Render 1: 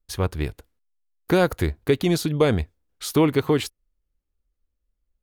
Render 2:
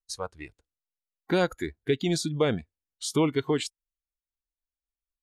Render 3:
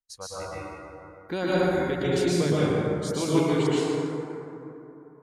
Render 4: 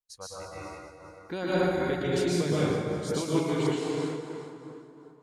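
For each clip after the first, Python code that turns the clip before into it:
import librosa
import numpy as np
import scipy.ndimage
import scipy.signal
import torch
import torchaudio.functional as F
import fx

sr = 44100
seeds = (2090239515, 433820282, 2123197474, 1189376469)

y1 = fx.noise_reduce_blind(x, sr, reduce_db=17)
y1 = scipy.signal.sosfilt(scipy.signal.butter(4, 8400.0, 'lowpass', fs=sr, output='sos'), y1)
y1 = fx.high_shelf(y1, sr, hz=5500.0, db=11.0)
y1 = y1 * 10.0 ** (-5.5 / 20.0)
y2 = fx.vibrato(y1, sr, rate_hz=1.0, depth_cents=42.0)
y2 = fx.rev_plate(y2, sr, seeds[0], rt60_s=3.2, hf_ratio=0.35, predelay_ms=105, drr_db=-9.5)
y2 = y2 * 10.0 ** (-7.0 / 20.0)
y3 = fx.echo_thinned(y2, sr, ms=206, feedback_pct=51, hz=830.0, wet_db=-9)
y3 = fx.am_noise(y3, sr, seeds[1], hz=5.7, depth_pct=60)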